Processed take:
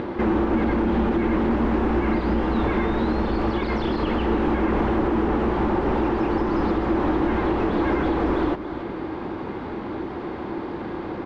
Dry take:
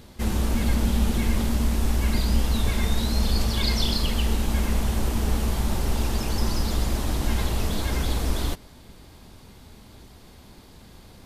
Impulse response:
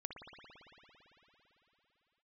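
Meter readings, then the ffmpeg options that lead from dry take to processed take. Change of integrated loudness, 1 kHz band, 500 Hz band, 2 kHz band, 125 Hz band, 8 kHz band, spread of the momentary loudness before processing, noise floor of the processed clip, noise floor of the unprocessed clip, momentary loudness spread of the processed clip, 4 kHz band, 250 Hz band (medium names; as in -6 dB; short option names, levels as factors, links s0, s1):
+2.0 dB, +9.5 dB, +11.0 dB, +4.5 dB, -3.5 dB, under -25 dB, 3 LU, -32 dBFS, -49 dBFS, 9 LU, -10.0 dB, +8.0 dB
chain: -filter_complex "[0:a]asplit=2[s0][s1];[s1]aecho=0:1:284:0.0944[s2];[s0][s2]amix=inputs=2:normalize=0,asplit=2[s3][s4];[s4]highpass=f=720:p=1,volume=35.5,asoftclip=type=tanh:threshold=0.398[s5];[s3][s5]amix=inputs=2:normalize=0,lowpass=f=1300:p=1,volume=0.501,equalizer=f=330:t=o:w=0.35:g=12.5,alimiter=limit=0.224:level=0:latency=1:release=333,acompressor=mode=upward:threshold=0.0501:ratio=2.5,lowpass=1700,bandreject=f=650:w=12"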